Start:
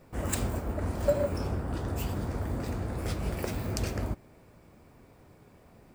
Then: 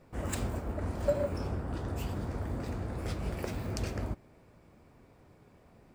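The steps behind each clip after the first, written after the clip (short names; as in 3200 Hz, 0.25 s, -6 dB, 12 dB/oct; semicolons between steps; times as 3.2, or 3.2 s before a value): high shelf 9600 Hz -8.5 dB; gain -3 dB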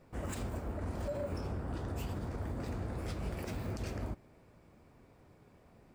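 limiter -27.5 dBFS, peak gain reduction 10.5 dB; gain -2 dB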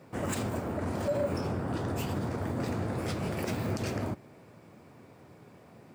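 HPF 100 Hz 24 dB/oct; gain +8.5 dB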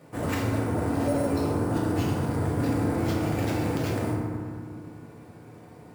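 sample-rate reducer 9500 Hz, jitter 0%; FDN reverb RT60 2.2 s, low-frequency decay 1.2×, high-frequency decay 0.4×, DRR -2.5 dB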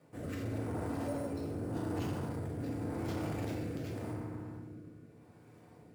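rotary speaker horn 0.85 Hz; core saturation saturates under 370 Hz; gain -8.5 dB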